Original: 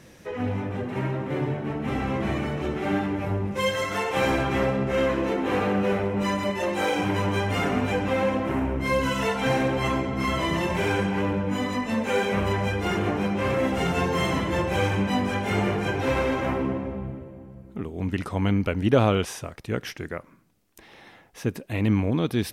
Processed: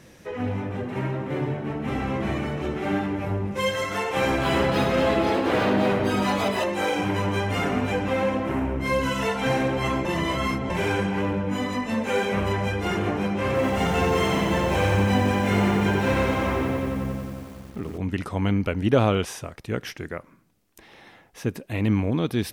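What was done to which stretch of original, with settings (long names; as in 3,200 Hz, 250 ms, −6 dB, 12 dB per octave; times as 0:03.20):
0:04.10–0:06.91: delay with pitch and tempo change per echo 307 ms, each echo +4 semitones, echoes 2
0:10.05–0:10.70: reverse
0:13.46–0:17.98: feedback echo at a low word length 90 ms, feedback 80%, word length 8 bits, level −5.5 dB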